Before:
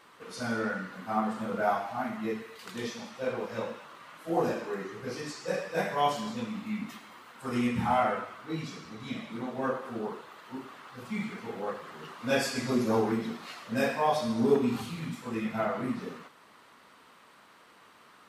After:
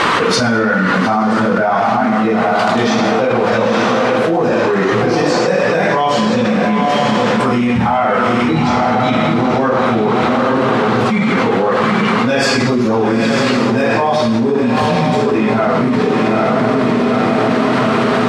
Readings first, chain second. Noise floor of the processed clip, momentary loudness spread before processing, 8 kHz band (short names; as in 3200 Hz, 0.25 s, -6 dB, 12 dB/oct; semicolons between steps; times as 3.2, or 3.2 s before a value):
-15 dBFS, 16 LU, +16.0 dB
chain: air absorption 90 m; diffused feedback echo 0.871 s, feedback 46%, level -8 dB; fast leveller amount 100%; gain +5.5 dB